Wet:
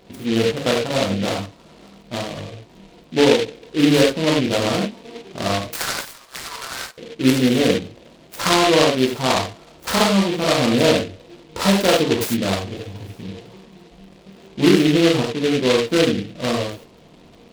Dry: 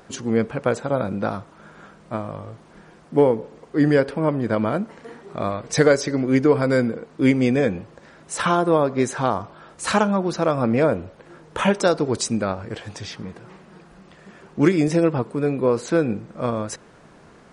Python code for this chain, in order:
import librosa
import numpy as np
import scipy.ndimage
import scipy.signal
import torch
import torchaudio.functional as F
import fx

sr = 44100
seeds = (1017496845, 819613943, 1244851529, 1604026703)

y = fx.wiener(x, sr, points=25)
y = fx.highpass(y, sr, hz=1200.0, slope=24, at=(5.67, 6.98))
y = fx.rev_gated(y, sr, seeds[0], gate_ms=120, shape='flat', drr_db=-3.5)
y = fx.dmg_crackle(y, sr, seeds[1], per_s=64.0, level_db=-44.0)
y = fx.noise_mod_delay(y, sr, seeds[2], noise_hz=2700.0, depth_ms=0.12)
y = F.gain(torch.from_numpy(y), -1.5).numpy()